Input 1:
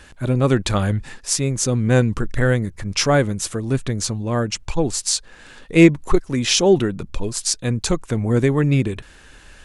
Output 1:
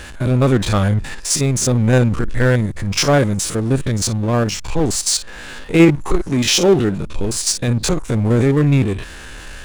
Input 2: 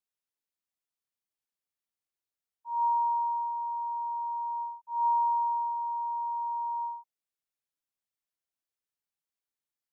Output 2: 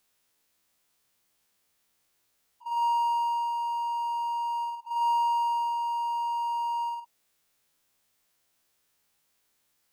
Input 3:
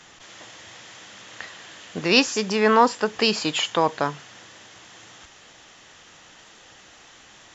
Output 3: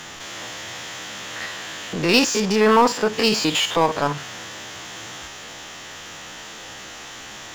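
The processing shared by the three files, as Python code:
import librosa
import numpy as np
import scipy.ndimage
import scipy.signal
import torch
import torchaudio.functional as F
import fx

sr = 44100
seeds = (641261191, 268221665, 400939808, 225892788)

y = fx.spec_steps(x, sr, hold_ms=50)
y = fx.power_curve(y, sr, exponent=0.7)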